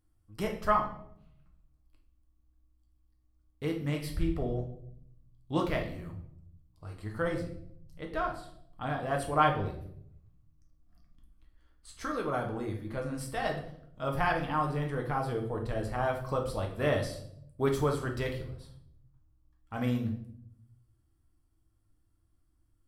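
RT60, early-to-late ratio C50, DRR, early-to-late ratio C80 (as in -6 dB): 0.70 s, 7.5 dB, 1.0 dB, 12.0 dB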